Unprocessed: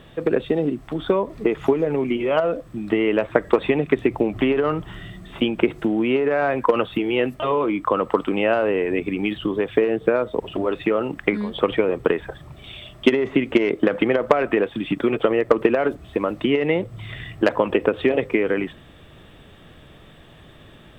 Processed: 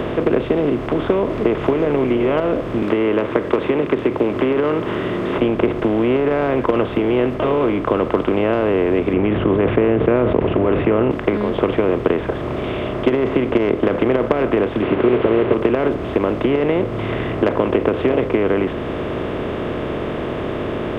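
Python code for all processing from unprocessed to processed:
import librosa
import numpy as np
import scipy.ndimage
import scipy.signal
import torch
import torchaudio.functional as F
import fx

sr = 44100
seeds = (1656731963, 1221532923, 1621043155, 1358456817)

y = fx.chain(x, sr, fx.highpass(hz=270.0, slope=12),
    fx.peak_eq(hz=700.0, db=-14.5, octaves=0.25),
    fx.band_squash(depth_pct=40), at=(2.82, 5.38))
y = fx.chain(y, sr, fx.steep_lowpass(hz=2700.0, slope=36),
    fx.peak_eq(hz=96.0, db=13.5, octaves=2.2),
    fx.sustainer(db_per_s=36.0), at=(9.13, 11.11))
y = fx.chain(y, sr, fx.delta_mod(bps=16000, step_db=-27.5),
    fx.highpass(hz=85.0, slope=12),
    fx.peak_eq(hz=390.0, db=12.0, octaves=0.34), at=(14.82, 15.54))
y = fx.bin_compress(y, sr, power=0.4)
y = fx.tilt_shelf(y, sr, db=4.0, hz=1500.0)
y = fx.band_squash(y, sr, depth_pct=40)
y = y * librosa.db_to_amplitude(-8.0)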